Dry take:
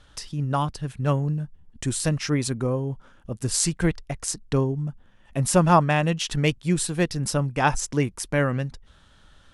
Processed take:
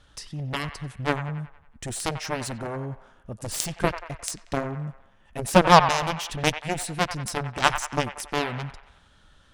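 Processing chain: Chebyshev shaper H 7 -13 dB, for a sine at -4 dBFS; feedback echo behind a band-pass 92 ms, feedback 52%, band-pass 1.4 kHz, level -9 dB; trim +2.5 dB

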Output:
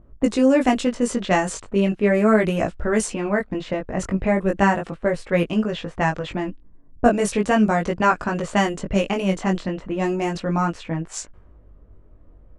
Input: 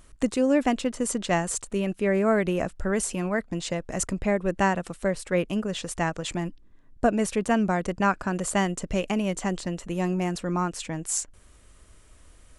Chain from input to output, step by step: level-controlled noise filter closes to 550 Hz, open at -20 dBFS; 3.15–5.25 s: dynamic bell 5.2 kHz, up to -5 dB, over -45 dBFS, Q 0.72; chorus 0.37 Hz, delay 18 ms, depth 3.2 ms; trim +8.5 dB

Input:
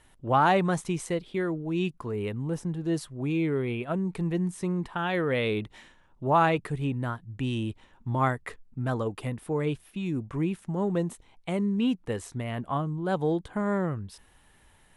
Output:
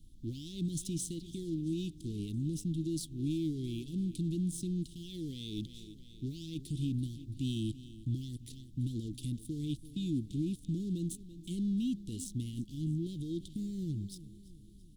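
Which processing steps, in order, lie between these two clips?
waveshaping leveller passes 2; in parallel at -6 dB: crossover distortion -36.5 dBFS; on the sum: bass shelf 400 Hz -7.5 dB; feedback delay 335 ms, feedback 53%, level -20 dB; peak limiter -21 dBFS, peak gain reduction 14 dB; added noise brown -49 dBFS; Chebyshev band-stop 320–3400 Hz, order 4; trim -5 dB

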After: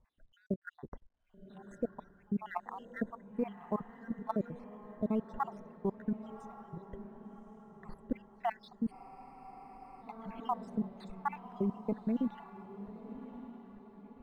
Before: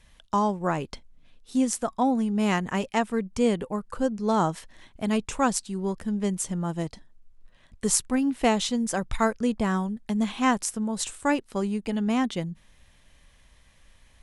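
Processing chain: random holes in the spectrogram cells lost 72%; low-pass 1.2 kHz 12 dB/octave; in parallel at -1 dB: peak limiter -22.5 dBFS, peak gain reduction 9 dB; on the sum: level held to a coarse grid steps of 13 dB; on a send: echo that smears into a reverb 1128 ms, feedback 43%, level -12 dB; on the sum: spectral freeze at 8.95 s, 1.07 s; trim -4 dB; IMA ADPCM 176 kbps 44.1 kHz

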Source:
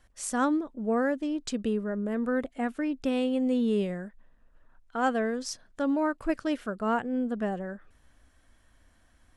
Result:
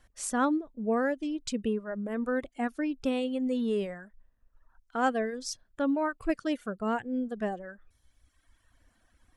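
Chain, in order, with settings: reverb removal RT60 1.4 s; 6.53–7.37 s: dynamic bell 1.1 kHz, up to -4 dB, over -40 dBFS, Q 0.88

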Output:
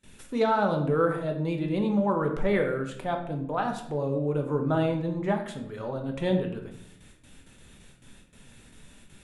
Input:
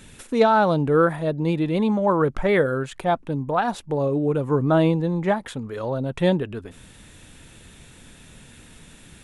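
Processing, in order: gate with hold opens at -36 dBFS; on a send: reverberation RT60 0.70 s, pre-delay 5 ms, DRR 3 dB; on the sum: trim -8 dB

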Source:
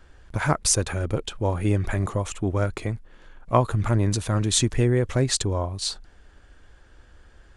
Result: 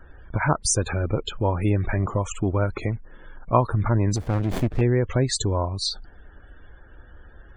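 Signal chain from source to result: loudest bins only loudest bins 64; dynamic bell 940 Hz, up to +4 dB, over -43 dBFS, Q 6.5; in parallel at +2 dB: compression, threshold -30 dBFS, peak gain reduction 16 dB; 4.16–4.81 s: on the sum: sliding maximum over 33 samples; trim -2 dB

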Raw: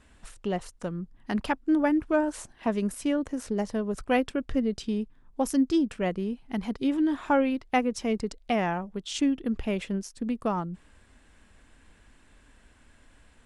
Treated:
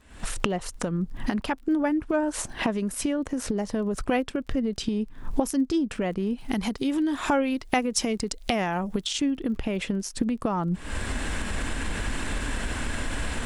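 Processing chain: recorder AGC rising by 80 dB/s; 6.38–9.07 s: treble shelf 4.1 kHz +11 dB; crackle 19 per s -42 dBFS; trim -1 dB

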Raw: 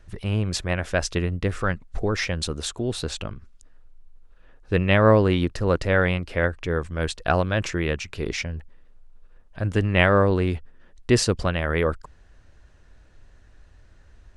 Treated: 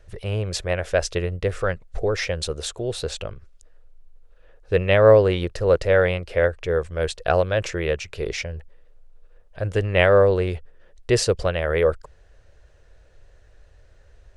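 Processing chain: graphic EQ 250/500/1000 Hz -12/+10/-4 dB

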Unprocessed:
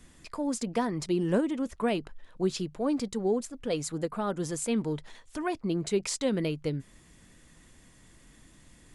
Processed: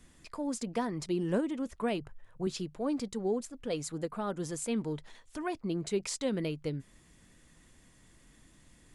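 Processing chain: 2.00–2.47 s: ten-band graphic EQ 125 Hz +11 dB, 250 Hz -9 dB, 4 kHz -10 dB; trim -4 dB

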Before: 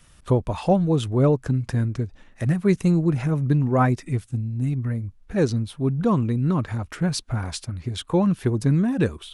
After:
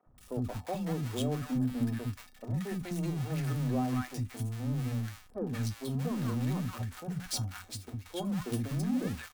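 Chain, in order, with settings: jump at every zero crossing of -24 dBFS; de-hum 89.62 Hz, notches 3; peak limiter -14.5 dBFS, peak gain reduction 8.5 dB; saturation -16 dBFS, distortion -20 dB; 1.45–1.95 s: graphic EQ with 31 bands 100 Hz -9 dB, 250 Hz +10 dB, 6.3 kHz -6 dB; gate -24 dBFS, range -19 dB; treble shelf 6.9 kHz +4 dB; feedback comb 250 Hz, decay 0.15 s, harmonics odd, mix 70%; three bands offset in time mids, lows, highs 60/180 ms, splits 280/990 Hz

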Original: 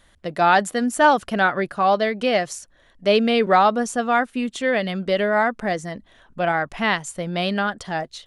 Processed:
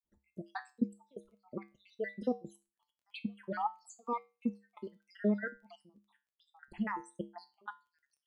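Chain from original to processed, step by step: random holes in the spectrogram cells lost 75%; trance gate ".xxxxx.x..x..x" 129 bpm -24 dB; small resonant body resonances 230/360/880 Hz, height 13 dB, ringing for 30 ms; phase shifter stages 6, 1.4 Hz, lowest notch 170–3700 Hz; crackle 16 per s -50 dBFS; feedback comb 68 Hz, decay 0.3 s, harmonics odd, mix 70%; trim -8.5 dB

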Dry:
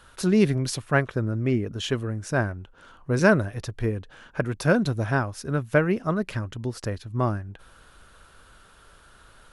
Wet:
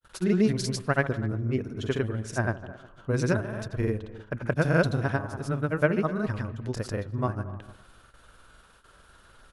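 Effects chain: on a send: feedback echo behind a low-pass 125 ms, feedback 49%, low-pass 1.6 kHz, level -13 dB; on the sum: granulator 100 ms, grains 20 per s, pitch spread up and down by 0 st; gate with hold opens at -44 dBFS; speakerphone echo 250 ms, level -20 dB; trim -1.5 dB

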